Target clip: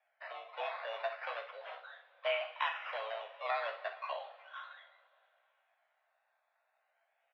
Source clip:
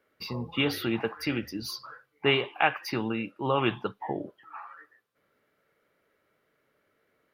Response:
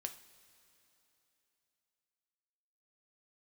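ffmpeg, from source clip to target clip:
-filter_complex "[0:a]asettb=1/sr,asplit=3[a][b][c];[a]atrim=end=2.684[d];[b]atrim=start=2.68:end=3.16,asetpts=PTS-STARTPTS,afade=t=in:d=0.004:c=qsin,afade=t=out:st=0.476:d=0.004:c=qsin,aeval=exprs='val(0)+0.5*0.0119*sgn(val(0))':c=same[e];[c]atrim=start=3.156[f];[d][e]acrossfade=d=0.004:c1=hsin:c2=qsin[g];[g][f]acrossfade=d=0.004:c1=qsin:c2=hsin,acrusher=samples=12:mix=1:aa=0.000001:lfo=1:lforange=7.2:lforate=0.35,aecho=1:1:15|61:0.473|0.251[h];[1:a]atrim=start_sample=2205,asetrate=52920,aresample=44100[i];[h][i]afir=irnorm=-1:irlink=0,alimiter=limit=-18.5dB:level=0:latency=1:release=357,highpass=f=390:t=q:w=0.5412,highpass=f=390:t=q:w=1.307,lowpass=f=3.3k:t=q:w=0.5176,lowpass=f=3.3k:t=q:w=0.7071,lowpass=f=3.3k:t=q:w=1.932,afreqshift=220,volume=-2dB"

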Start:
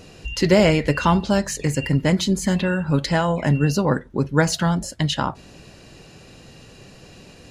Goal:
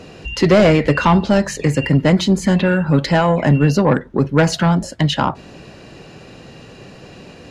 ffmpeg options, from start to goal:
-filter_complex "[0:a]lowpass=f=2.4k:p=1,lowshelf=f=87:g=-10,acrossover=split=120[a][b];[b]asoftclip=type=tanh:threshold=-14dB[c];[a][c]amix=inputs=2:normalize=0,volume=8.5dB"

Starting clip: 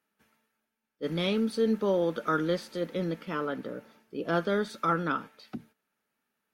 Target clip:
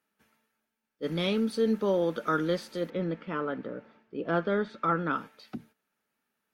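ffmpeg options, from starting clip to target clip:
-filter_complex "[0:a]asettb=1/sr,asplit=3[a][b][c];[a]atrim=end=2.904[d];[b]atrim=start=2.9:end=5.13,asetpts=PTS-STARTPTS,afade=t=in:d=0.004:c=qsin,afade=t=out:st=2.226:d=0.004:c=qsin,lowpass=2.7k[e];[c]atrim=start=5.126[f];[d][e]acrossfade=d=0.004:c1=hsin:c2=qsin[g];[g][f]acrossfade=d=0.004:c1=qsin:c2=hsin"

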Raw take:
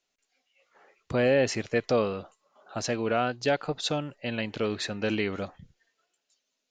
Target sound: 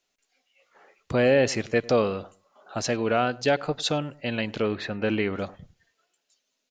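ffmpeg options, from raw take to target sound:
-filter_complex "[0:a]asettb=1/sr,asplit=3[a][b][c];[a]atrim=end=4.624[d];[b]atrim=start=4.62:end=5.39,asetpts=PTS-STARTPTS,afade=t=in:d=0.004:c=qsin,afade=t=out:st=0.766:d=0.004:c=qsin,lowpass=2.8k[e];[c]atrim=start=5.386[f];[d][e]acrossfade=d=0.004:c1=hsin:c2=qsin[g];[g][f]acrossfade=d=0.004:c1=qsin:c2=hsin,asplit=2[h][i];[i]adelay=101,lowpass=f=1.1k:p=1,volume=-20dB,asplit=2[j][k];[k]adelay=101,lowpass=f=1.1k:p=1,volume=0.28[l];[h][j][l]amix=inputs=3:normalize=0,volume=3dB"

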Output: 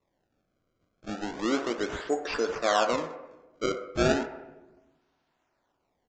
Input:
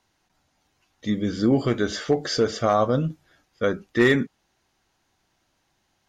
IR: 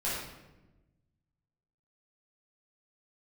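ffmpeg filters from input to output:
-filter_complex "[0:a]highpass=f=270:w=0.5412,highpass=f=270:w=1.3066,acrusher=samples=28:mix=1:aa=0.000001:lfo=1:lforange=44.8:lforate=0.34,aresample=16000,aresample=44100,asplit=2[a][b];[b]acrossover=split=420 2000:gain=0.1 1 0.112[c][d][e];[c][d][e]amix=inputs=3:normalize=0[f];[1:a]atrim=start_sample=2205[g];[f][g]afir=irnorm=-1:irlink=0,volume=-9dB[h];[a][h]amix=inputs=2:normalize=0,volume=-5.5dB"

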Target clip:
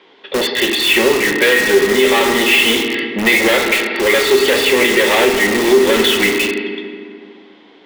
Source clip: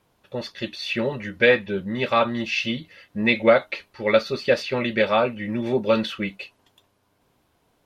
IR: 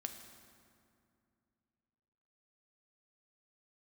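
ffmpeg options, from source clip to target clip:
-filter_complex "[0:a]acrossover=split=2700[a][b];[b]acompressor=threshold=-34dB:ratio=4:attack=1:release=60[c];[a][c]amix=inputs=2:normalize=0,aeval=exprs='(tanh(15.8*val(0)+0.35)-tanh(0.35))/15.8':c=same,highpass=f=250:w=0.5412,highpass=f=250:w=1.3066,equalizer=f=250:t=q:w=4:g=-4,equalizer=f=390:t=q:w=4:g=8,equalizer=f=610:t=q:w=4:g=-6,equalizer=f=1.3k:t=q:w=4:g=-3,equalizer=f=2k:t=q:w=4:g=8,equalizer=f=3.3k:t=q:w=4:g=9,lowpass=f=4.4k:w=0.5412,lowpass=f=4.4k:w=1.3066[d];[1:a]atrim=start_sample=2205,asetrate=52920,aresample=44100[e];[d][e]afir=irnorm=-1:irlink=0,asplit=2[f][g];[g]aeval=exprs='(mod(50.1*val(0)+1,2)-1)/50.1':c=same,volume=-4.5dB[h];[f][h]amix=inputs=2:normalize=0,alimiter=level_in=21dB:limit=-1dB:release=50:level=0:latency=1,volume=-1dB"

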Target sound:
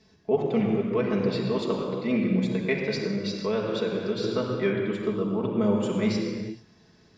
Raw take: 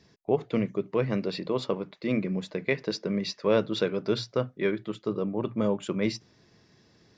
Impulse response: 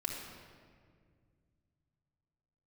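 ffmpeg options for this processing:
-filter_complex "[1:a]atrim=start_sample=2205,afade=t=out:st=0.34:d=0.01,atrim=end_sample=15435,asetrate=27342,aresample=44100[a];[0:a][a]afir=irnorm=-1:irlink=0,asettb=1/sr,asplit=3[b][c][d];[b]atrim=end=3.044[e];[c]atrim=start=3.04:end=4.24,asetpts=PTS-STARTPTS,afade=t=in:d=0.004:c=qsin,afade=t=out:st=1.196:d=0.004:c=qsin,acompressor=threshold=-24dB:ratio=2[f];[d]atrim=start=4.236[g];[e][f]acrossfade=d=0.004:c1=hsin:c2=qsin[h];[h][g]acrossfade=d=0.004:c1=qsin:c2=hsin,volume=-2.5dB"

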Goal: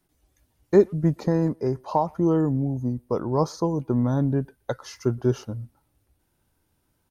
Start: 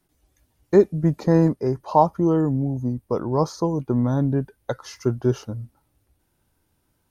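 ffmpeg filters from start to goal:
-filter_complex "[0:a]asettb=1/sr,asplit=3[a][b][c];[a]atrim=end=1.114[d];[b]atrim=start=1.11:end=2.09,asetpts=PTS-STARTPTS,afade=t=in:d=0.004:c=qsin,afade=t=out:st=0.976:d=0.004:c=qsin,acompressor=threshold=-16dB:ratio=6[e];[c]atrim=start=2.086[f];[d][e]acrossfade=d=0.004:c1=hsin:c2=qsin[g];[g][f]acrossfade=d=0.004:c1=qsin:c2=hsin,asplit=2[h][i];[i]adelay=120,highpass=300,lowpass=3.4k,asoftclip=type=hard:threshold=-13dB,volume=-29dB[j];[h][j]amix=inputs=2:normalize=0,volume=-1.5dB"

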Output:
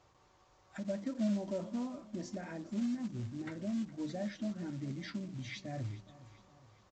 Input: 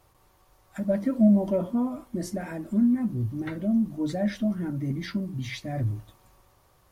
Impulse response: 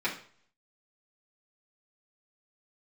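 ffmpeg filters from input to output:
-af "highpass=f=100:p=1,acompressor=threshold=-47dB:ratio=1.5,aresample=16000,acrusher=bits=5:mode=log:mix=0:aa=0.000001,aresample=44100,aecho=1:1:413|826|1239|1652:0.119|0.0618|0.0321|0.0167,volume=-3dB"

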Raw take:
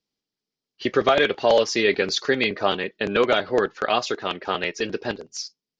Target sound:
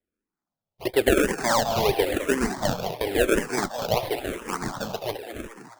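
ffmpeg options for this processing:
-filter_complex "[0:a]acrusher=samples=31:mix=1:aa=0.000001:lfo=1:lforange=31:lforate=1.9,asplit=2[a][b];[b]asplit=6[c][d][e][f][g][h];[c]adelay=210,afreqshift=110,volume=-9.5dB[i];[d]adelay=420,afreqshift=220,volume=-14.7dB[j];[e]adelay=630,afreqshift=330,volume=-19.9dB[k];[f]adelay=840,afreqshift=440,volume=-25.1dB[l];[g]adelay=1050,afreqshift=550,volume=-30.3dB[m];[h]adelay=1260,afreqshift=660,volume=-35.5dB[n];[i][j][k][l][m][n]amix=inputs=6:normalize=0[o];[a][o]amix=inputs=2:normalize=0,asplit=2[p][q];[q]afreqshift=-0.94[r];[p][r]amix=inputs=2:normalize=1"

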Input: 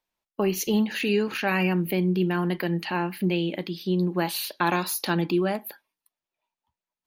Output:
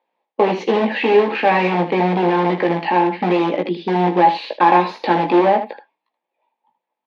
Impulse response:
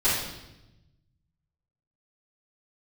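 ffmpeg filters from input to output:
-filter_complex "[0:a]asplit=2[a][b];[b]aeval=exprs='(mod(10.6*val(0)+1,2)-1)/10.6':c=same,volume=-4dB[c];[a][c]amix=inputs=2:normalize=0,highpass=f=220:w=0.5412,highpass=f=220:w=1.3066,equalizer=f=500:t=q:w=4:g=8,equalizer=f=830:t=q:w=4:g=10,equalizer=f=1.4k:t=q:w=4:g=-9,equalizer=f=2.9k:t=q:w=4:g=-5,lowpass=f=3.1k:w=0.5412,lowpass=f=3.1k:w=1.3066,aecho=1:1:17|78:0.531|0.335,volume=5.5dB"

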